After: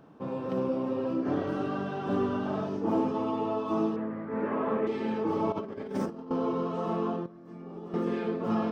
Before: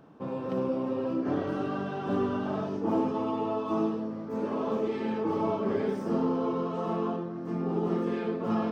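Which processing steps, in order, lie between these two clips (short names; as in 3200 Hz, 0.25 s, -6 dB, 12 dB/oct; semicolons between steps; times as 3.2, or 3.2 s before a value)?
3.96–4.87 synth low-pass 1900 Hz, resonance Q 3.3; 5.52–6.31 negative-ratio compressor -34 dBFS, ratio -0.5; 7.26–7.94 resonator 570 Hz, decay 0.18 s, harmonics all, mix 80%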